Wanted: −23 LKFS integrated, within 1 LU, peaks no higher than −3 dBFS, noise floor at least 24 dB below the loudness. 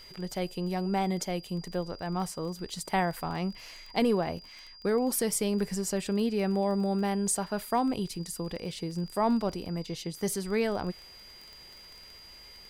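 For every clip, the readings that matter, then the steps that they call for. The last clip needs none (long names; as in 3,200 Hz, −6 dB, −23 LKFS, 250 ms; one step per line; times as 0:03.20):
crackle rate 22 per second; interfering tone 4,800 Hz; level of the tone −49 dBFS; integrated loudness −31.0 LKFS; sample peak −17.0 dBFS; target loudness −23.0 LKFS
→ click removal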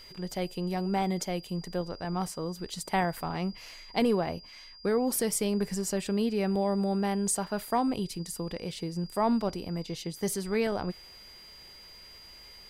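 crackle rate 0 per second; interfering tone 4,800 Hz; level of the tone −49 dBFS
→ notch filter 4,800 Hz, Q 30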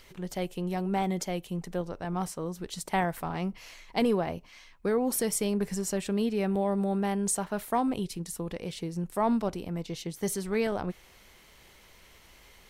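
interfering tone none found; integrated loudness −31.0 LKFS; sample peak −17.0 dBFS; target loudness −23.0 LKFS
→ level +8 dB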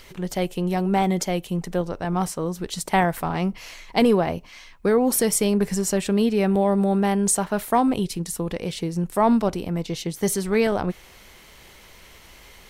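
integrated loudness −23.0 LKFS; sample peak −9.0 dBFS; background noise floor −48 dBFS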